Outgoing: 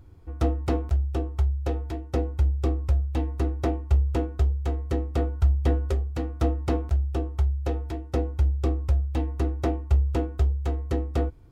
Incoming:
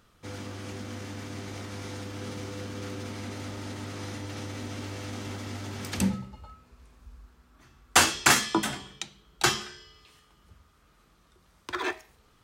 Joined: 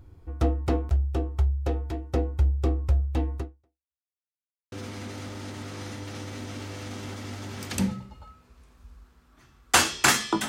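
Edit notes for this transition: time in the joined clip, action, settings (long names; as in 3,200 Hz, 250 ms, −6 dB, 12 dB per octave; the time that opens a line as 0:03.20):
outgoing
0:03.37–0:04.00: fade out exponential
0:04.00–0:04.72: silence
0:04.72: continue with incoming from 0:02.94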